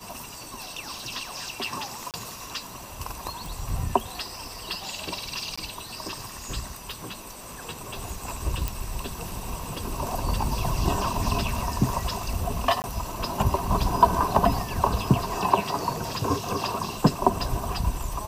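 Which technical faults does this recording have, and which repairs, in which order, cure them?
0:02.11–0:02.14: drop-out 28 ms
0:03.46: click
0:05.56–0:05.58: drop-out 15 ms
0:08.68: click
0:12.82–0:12.84: drop-out 19 ms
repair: click removal
repair the gap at 0:02.11, 28 ms
repair the gap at 0:05.56, 15 ms
repair the gap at 0:12.82, 19 ms

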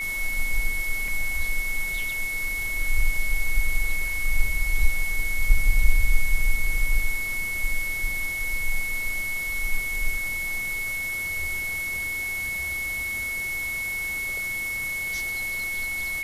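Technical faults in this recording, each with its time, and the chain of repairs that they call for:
whistle 2,200 Hz −27 dBFS
0:01.08: drop-out 2.1 ms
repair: notch filter 2,200 Hz, Q 30
repair the gap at 0:01.08, 2.1 ms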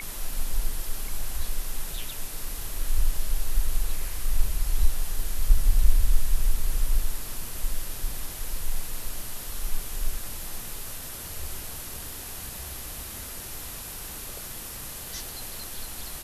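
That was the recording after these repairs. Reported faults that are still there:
none of them is left

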